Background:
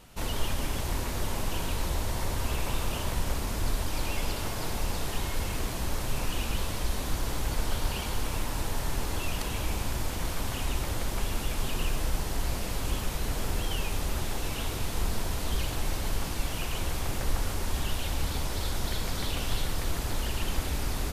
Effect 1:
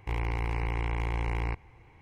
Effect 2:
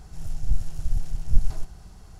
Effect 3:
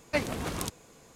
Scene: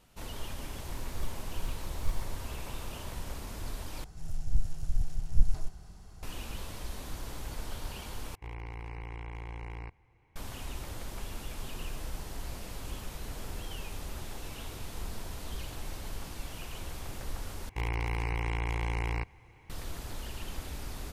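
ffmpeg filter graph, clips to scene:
ffmpeg -i bed.wav -i cue0.wav -i cue1.wav -filter_complex "[2:a]asplit=2[link_01][link_02];[1:a]asplit=2[link_03][link_04];[0:a]volume=-9.5dB[link_05];[link_01]acrusher=samples=39:mix=1:aa=0.000001[link_06];[link_04]highshelf=frequency=3700:gain=9.5[link_07];[link_05]asplit=4[link_08][link_09][link_10][link_11];[link_08]atrim=end=4.044[link_12];[link_02]atrim=end=2.19,asetpts=PTS-STARTPTS,volume=-4.5dB[link_13];[link_09]atrim=start=6.226:end=8.354[link_14];[link_03]atrim=end=2.01,asetpts=PTS-STARTPTS,volume=-11dB[link_15];[link_10]atrim=start=10.356:end=17.694[link_16];[link_07]atrim=end=2.01,asetpts=PTS-STARTPTS,volume=-2dB[link_17];[link_11]atrim=start=19.696[link_18];[link_06]atrim=end=2.19,asetpts=PTS-STARTPTS,volume=-13dB,afade=type=in:duration=0.004:curve=hsin,afade=type=out:start_time=2.186:duration=0.004:curve=hsin,adelay=720[link_19];[link_12][link_13]acrossfade=duration=0.004:curve1=hsin:curve2=hsin[link_20];[link_20][link_14]acrossfade=duration=0.004:curve1=hsin:curve2=hsin[link_21];[link_21][link_15]acrossfade=duration=0.004:curve1=hsin:curve2=hsin[link_22];[link_22][link_16]acrossfade=duration=0.004:curve1=hsin:curve2=hsin[link_23];[link_23][link_17]acrossfade=duration=0.004:curve1=hsin:curve2=hsin[link_24];[link_24][link_18]acrossfade=duration=0.004:curve1=hsin:curve2=hsin[link_25];[link_25][link_19]amix=inputs=2:normalize=0" out.wav

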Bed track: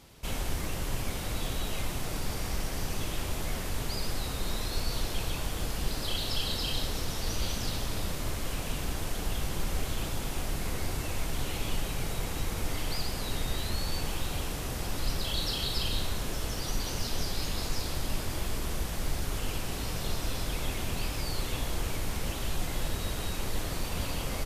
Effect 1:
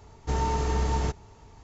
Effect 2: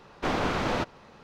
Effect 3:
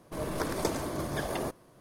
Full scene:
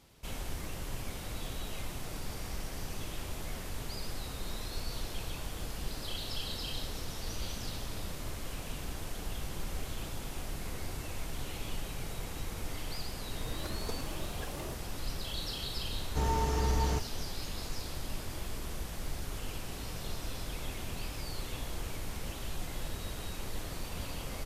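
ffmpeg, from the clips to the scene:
ffmpeg -i bed.wav -i cue0.wav -i cue1.wav -i cue2.wav -filter_complex "[0:a]volume=-6.5dB[link_01];[3:a]asplit=2[link_02][link_03];[link_03]adelay=2.9,afreqshift=2.1[link_04];[link_02][link_04]amix=inputs=2:normalize=1,atrim=end=1.8,asetpts=PTS-STARTPTS,volume=-8.5dB,afade=type=in:duration=0.004:curve=hsin,afade=type=out:start_time=1.796:duration=0.004:curve=hsin,adelay=13240[link_05];[1:a]atrim=end=1.63,asetpts=PTS-STARTPTS,volume=-4dB,afade=type=in:duration=0.004:curve=hsin,afade=type=out:start_time=1.626:duration=0.004:curve=hsin,adelay=700308S[link_06];[link_01][link_05][link_06]amix=inputs=3:normalize=0" out.wav

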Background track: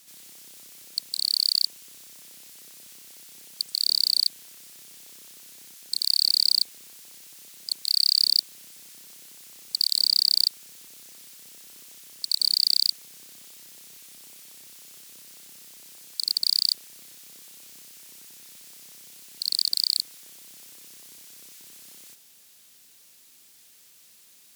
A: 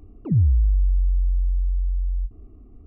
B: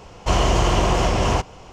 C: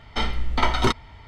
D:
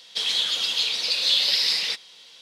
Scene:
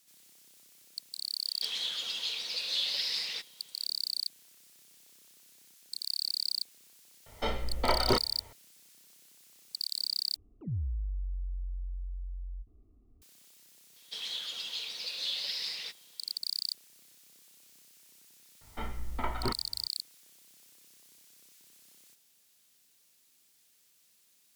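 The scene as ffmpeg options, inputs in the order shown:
ffmpeg -i bed.wav -i cue0.wav -i cue1.wav -i cue2.wav -i cue3.wav -filter_complex "[4:a]asplit=2[link_01][link_02];[3:a]asplit=2[link_03][link_04];[0:a]volume=-12dB[link_05];[link_03]equalizer=frequency=530:width=1.9:gain=13.5[link_06];[link_04]lowpass=1900[link_07];[link_05]asplit=2[link_08][link_09];[link_08]atrim=end=10.364[link_10];[1:a]atrim=end=2.86,asetpts=PTS-STARTPTS,volume=-16.5dB[link_11];[link_09]atrim=start=13.216[link_12];[link_01]atrim=end=2.41,asetpts=PTS-STARTPTS,volume=-11dB,afade=type=in:duration=0.004:curve=hsin,afade=type=out:start_time=2.406:duration=0.004:curve=hsin,adelay=1460[link_13];[link_06]atrim=end=1.27,asetpts=PTS-STARTPTS,volume=-9.5dB,afade=type=in:duration=0.004:curve=hsin,afade=type=out:start_time=1.266:duration=0.004:curve=hsin,adelay=7260[link_14];[link_02]atrim=end=2.41,asetpts=PTS-STARTPTS,volume=-14dB,afade=type=in:duration=0.004:curve=hsin,afade=type=out:start_time=2.406:duration=0.004:curve=hsin,adelay=615636S[link_15];[link_07]atrim=end=1.27,asetpts=PTS-STARTPTS,volume=-12dB,afade=type=in:duration=0.004:curve=hsin,afade=type=out:start_time=1.266:duration=0.004:curve=hsin,adelay=18610[link_16];[link_10][link_11]acrossfade=duration=0.004:curve1=hsin:curve2=hsin[link_17];[link_17][link_12]acrossfade=duration=0.004:curve1=hsin:curve2=hsin[link_18];[link_18][link_13][link_14][link_15][link_16]amix=inputs=5:normalize=0" out.wav

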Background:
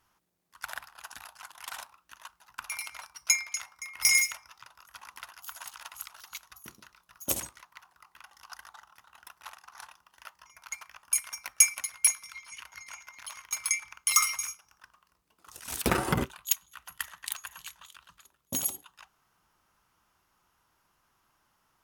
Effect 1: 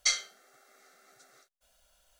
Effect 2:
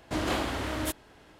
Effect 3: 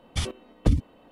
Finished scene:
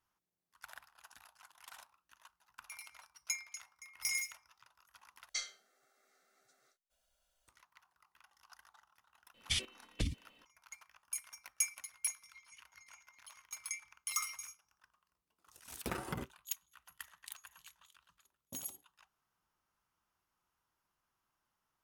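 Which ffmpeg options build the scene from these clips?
ffmpeg -i bed.wav -i cue0.wav -i cue1.wav -i cue2.wav -filter_complex "[0:a]volume=-13.5dB[link_01];[3:a]highshelf=frequency=1600:width_type=q:width=1.5:gain=13.5[link_02];[link_01]asplit=2[link_03][link_04];[link_03]atrim=end=5.294[link_05];[1:a]atrim=end=2.19,asetpts=PTS-STARTPTS,volume=-12.5dB[link_06];[link_04]atrim=start=7.476[link_07];[link_02]atrim=end=1.11,asetpts=PTS-STARTPTS,volume=-15.5dB,afade=type=in:duration=0.004:curve=hsin,afade=type=out:start_time=1.106:duration=0.004:curve=hsin,adelay=9340[link_08];[link_05][link_06]acrossfade=duration=0.004:curve1=hsin:curve2=hsin[link_09];[link_09][link_07]acrossfade=duration=0.004:curve1=hsin:curve2=hsin[link_10];[link_10][link_08]amix=inputs=2:normalize=0" out.wav

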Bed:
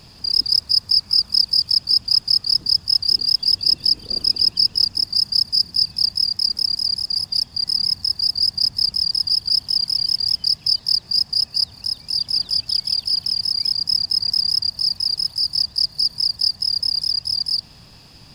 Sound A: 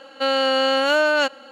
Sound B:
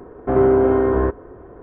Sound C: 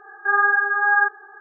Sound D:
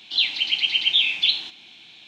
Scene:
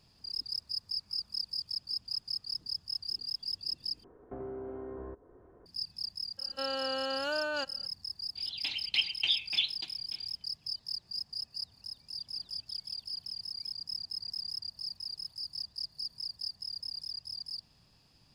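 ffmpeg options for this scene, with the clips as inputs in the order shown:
ffmpeg -i bed.wav -i cue0.wav -i cue1.wav -i cue2.wav -i cue3.wav -filter_complex "[0:a]volume=-19.5dB[link_01];[2:a]acrossover=split=500|1000[link_02][link_03][link_04];[link_02]acompressor=threshold=-25dB:ratio=4[link_05];[link_03]acompressor=threshold=-33dB:ratio=4[link_06];[link_04]acompressor=threshold=-47dB:ratio=4[link_07];[link_05][link_06][link_07]amix=inputs=3:normalize=0[link_08];[1:a]asuperstop=centerf=2100:order=4:qfactor=6.5[link_09];[4:a]aeval=exprs='val(0)*pow(10,-34*if(lt(mod(3.4*n/s,1),2*abs(3.4)/1000),1-mod(3.4*n/s,1)/(2*abs(3.4)/1000),(mod(3.4*n/s,1)-2*abs(3.4)/1000)/(1-2*abs(3.4)/1000))/20)':channel_layout=same[link_10];[link_01]asplit=2[link_11][link_12];[link_11]atrim=end=4.044[link_13];[link_08]atrim=end=1.62,asetpts=PTS-STARTPTS,volume=-17.5dB[link_14];[link_12]atrim=start=5.656[link_15];[link_09]atrim=end=1.51,asetpts=PTS-STARTPTS,volume=-15.5dB,afade=type=in:duration=0.02,afade=type=out:start_time=1.49:duration=0.02,adelay=6370[link_16];[link_10]atrim=end=2.07,asetpts=PTS-STARTPTS,volume=-0.5dB,afade=type=in:duration=0.05,afade=type=out:start_time=2.02:duration=0.05,adelay=8350[link_17];[link_13][link_14]acrossfade=duration=0.004:curve1=hsin:curve2=hsin[link_18];[link_18][link_15]acrossfade=duration=0.004:curve1=hsin:curve2=hsin[link_19];[link_19][link_16][link_17]amix=inputs=3:normalize=0" out.wav

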